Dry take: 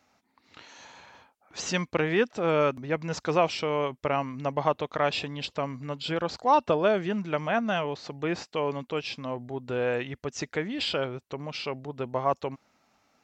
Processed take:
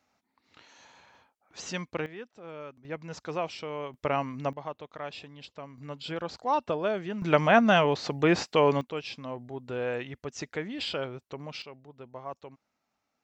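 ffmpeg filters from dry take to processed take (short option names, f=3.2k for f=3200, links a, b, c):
-af "asetnsamples=n=441:p=0,asendcmd='2.06 volume volume -18.5dB;2.85 volume volume -8.5dB;3.94 volume volume -1dB;4.53 volume volume -12.5dB;5.78 volume volume -5.5dB;7.22 volume volume 6.5dB;8.81 volume volume -4dB;11.62 volume volume -13.5dB',volume=-6.5dB"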